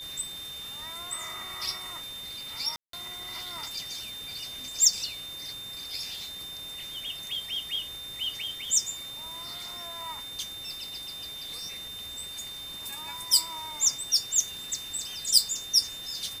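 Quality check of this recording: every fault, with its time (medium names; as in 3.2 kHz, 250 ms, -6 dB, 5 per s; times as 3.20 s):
whine 3.6 kHz -38 dBFS
2.76–2.93 s: dropout 173 ms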